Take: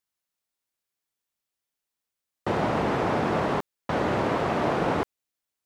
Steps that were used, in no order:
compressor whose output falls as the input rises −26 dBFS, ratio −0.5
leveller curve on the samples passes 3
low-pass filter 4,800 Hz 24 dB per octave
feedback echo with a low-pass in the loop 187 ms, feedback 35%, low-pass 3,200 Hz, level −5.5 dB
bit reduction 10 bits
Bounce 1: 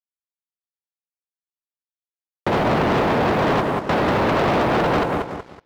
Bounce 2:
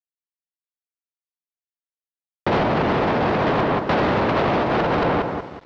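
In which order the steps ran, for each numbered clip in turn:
compressor whose output falls as the input rises, then feedback echo with a low-pass in the loop, then bit reduction, then low-pass filter, then leveller curve on the samples
feedback echo with a low-pass in the loop, then compressor whose output falls as the input rises, then bit reduction, then leveller curve on the samples, then low-pass filter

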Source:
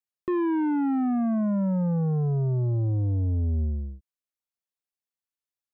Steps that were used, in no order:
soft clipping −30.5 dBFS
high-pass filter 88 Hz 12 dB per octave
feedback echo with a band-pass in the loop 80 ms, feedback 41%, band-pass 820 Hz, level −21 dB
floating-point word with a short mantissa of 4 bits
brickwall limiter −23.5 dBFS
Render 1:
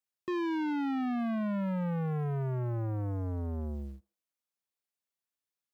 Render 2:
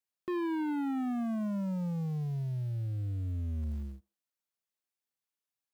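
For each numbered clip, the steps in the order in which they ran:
brickwall limiter, then floating-point word with a short mantissa, then feedback echo with a band-pass in the loop, then soft clipping, then high-pass filter
floating-point word with a short mantissa, then high-pass filter, then brickwall limiter, then soft clipping, then feedback echo with a band-pass in the loop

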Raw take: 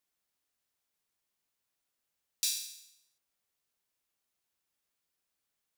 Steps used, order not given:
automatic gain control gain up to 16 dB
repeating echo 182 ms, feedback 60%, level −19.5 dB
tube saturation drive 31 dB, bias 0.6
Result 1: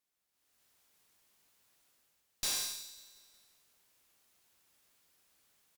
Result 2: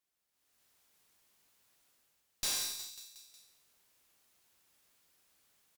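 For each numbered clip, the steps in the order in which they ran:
automatic gain control, then tube saturation, then repeating echo
automatic gain control, then repeating echo, then tube saturation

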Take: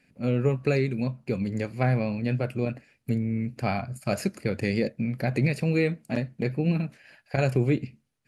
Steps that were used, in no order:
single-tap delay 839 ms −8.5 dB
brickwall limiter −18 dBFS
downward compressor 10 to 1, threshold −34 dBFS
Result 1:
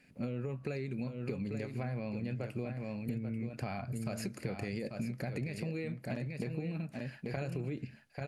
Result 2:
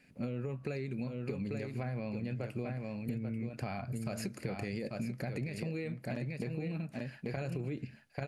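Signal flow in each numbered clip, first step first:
brickwall limiter, then single-tap delay, then downward compressor
single-tap delay, then brickwall limiter, then downward compressor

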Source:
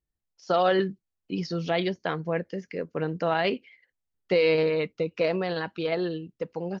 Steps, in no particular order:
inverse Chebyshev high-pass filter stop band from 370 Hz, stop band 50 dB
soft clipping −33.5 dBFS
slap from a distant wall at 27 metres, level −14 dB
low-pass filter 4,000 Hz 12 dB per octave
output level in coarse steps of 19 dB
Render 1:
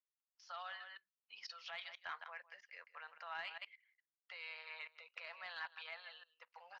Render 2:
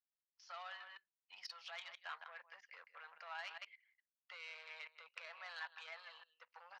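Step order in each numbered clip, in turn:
slap from a distant wall, then output level in coarse steps, then inverse Chebyshev high-pass filter, then soft clipping, then low-pass filter
slap from a distant wall, then output level in coarse steps, then low-pass filter, then soft clipping, then inverse Chebyshev high-pass filter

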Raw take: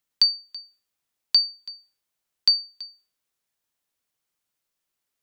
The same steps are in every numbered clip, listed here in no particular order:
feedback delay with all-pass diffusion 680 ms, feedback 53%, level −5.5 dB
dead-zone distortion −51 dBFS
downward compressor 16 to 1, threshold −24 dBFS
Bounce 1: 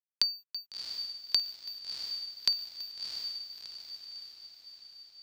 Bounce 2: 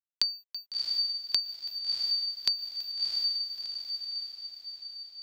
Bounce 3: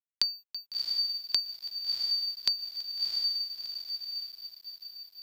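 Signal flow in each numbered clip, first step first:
downward compressor, then dead-zone distortion, then feedback delay with all-pass diffusion
dead-zone distortion, then feedback delay with all-pass diffusion, then downward compressor
feedback delay with all-pass diffusion, then downward compressor, then dead-zone distortion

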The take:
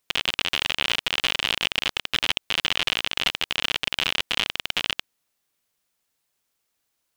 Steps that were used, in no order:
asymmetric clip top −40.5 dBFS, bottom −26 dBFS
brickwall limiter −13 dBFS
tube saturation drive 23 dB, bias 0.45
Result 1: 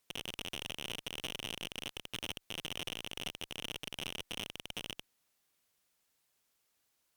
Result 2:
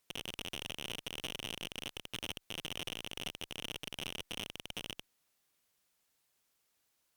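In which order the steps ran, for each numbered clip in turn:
brickwall limiter, then tube saturation, then asymmetric clip
brickwall limiter, then asymmetric clip, then tube saturation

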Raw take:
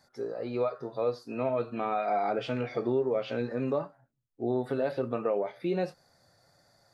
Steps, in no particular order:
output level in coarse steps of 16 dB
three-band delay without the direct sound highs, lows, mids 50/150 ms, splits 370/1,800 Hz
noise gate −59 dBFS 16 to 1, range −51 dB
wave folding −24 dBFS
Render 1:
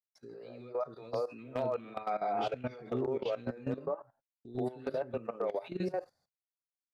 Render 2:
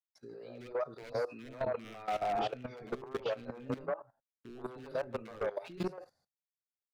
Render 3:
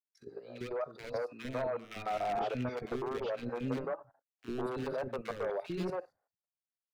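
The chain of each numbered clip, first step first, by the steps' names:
three-band delay without the direct sound, then noise gate, then output level in coarse steps, then wave folding
wave folding, then three-band delay without the direct sound, then noise gate, then output level in coarse steps
wave folding, then noise gate, then output level in coarse steps, then three-band delay without the direct sound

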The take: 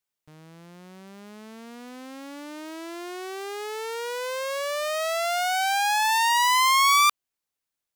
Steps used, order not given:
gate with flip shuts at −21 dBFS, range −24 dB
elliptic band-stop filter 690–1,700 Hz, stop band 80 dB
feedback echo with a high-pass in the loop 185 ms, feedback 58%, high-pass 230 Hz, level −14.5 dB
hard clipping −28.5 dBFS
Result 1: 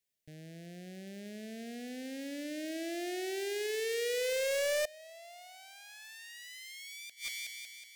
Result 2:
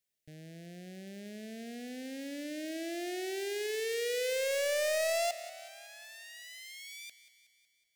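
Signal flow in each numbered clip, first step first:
feedback echo with a high-pass in the loop, then gate with flip, then elliptic band-stop filter, then hard clipping
elliptic band-stop filter, then gate with flip, then hard clipping, then feedback echo with a high-pass in the loop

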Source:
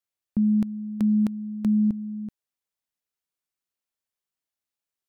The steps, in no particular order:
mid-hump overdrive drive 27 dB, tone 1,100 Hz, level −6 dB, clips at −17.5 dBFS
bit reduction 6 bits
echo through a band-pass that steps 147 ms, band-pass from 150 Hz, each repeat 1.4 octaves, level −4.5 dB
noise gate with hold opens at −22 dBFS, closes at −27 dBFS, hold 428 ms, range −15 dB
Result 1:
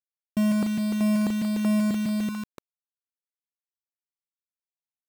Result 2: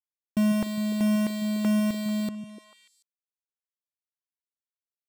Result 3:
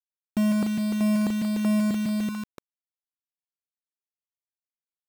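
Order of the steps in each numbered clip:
echo through a band-pass that steps, then mid-hump overdrive, then bit reduction, then noise gate with hold
mid-hump overdrive, then bit reduction, then noise gate with hold, then echo through a band-pass that steps
noise gate with hold, then echo through a band-pass that steps, then mid-hump overdrive, then bit reduction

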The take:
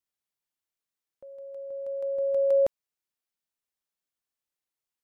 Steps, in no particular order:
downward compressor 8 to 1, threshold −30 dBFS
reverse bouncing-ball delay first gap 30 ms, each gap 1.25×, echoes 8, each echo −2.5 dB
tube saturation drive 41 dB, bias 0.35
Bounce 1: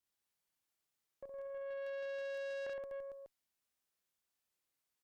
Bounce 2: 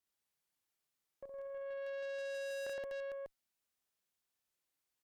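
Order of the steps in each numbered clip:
downward compressor, then reverse bouncing-ball delay, then tube saturation
reverse bouncing-ball delay, then tube saturation, then downward compressor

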